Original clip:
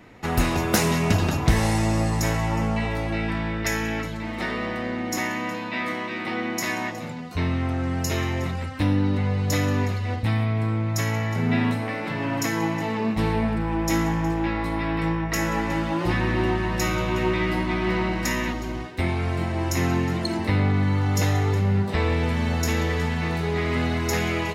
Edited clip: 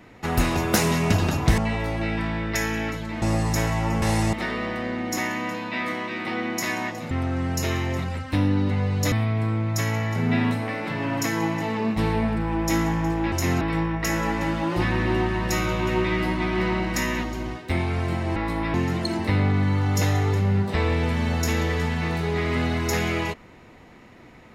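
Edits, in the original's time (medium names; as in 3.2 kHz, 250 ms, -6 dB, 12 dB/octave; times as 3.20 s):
1.58–1.89 s: swap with 2.69–4.33 s
7.11–7.58 s: delete
9.59–10.32 s: delete
14.52–14.90 s: swap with 19.65–19.94 s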